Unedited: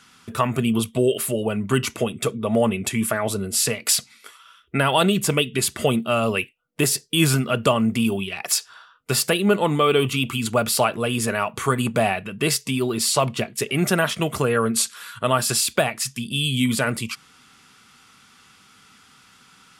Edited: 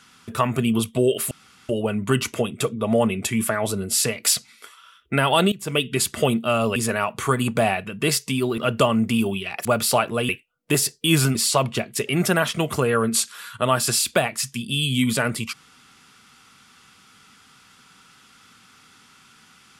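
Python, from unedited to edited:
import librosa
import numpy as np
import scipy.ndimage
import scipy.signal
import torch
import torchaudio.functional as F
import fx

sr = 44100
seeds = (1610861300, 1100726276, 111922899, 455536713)

y = fx.edit(x, sr, fx.insert_room_tone(at_s=1.31, length_s=0.38),
    fx.fade_in_from(start_s=5.14, length_s=0.28, curve='qua', floor_db=-17.0),
    fx.swap(start_s=6.38, length_s=1.06, other_s=11.15, other_length_s=1.82),
    fx.cut(start_s=8.51, length_s=2.0), tone=tone)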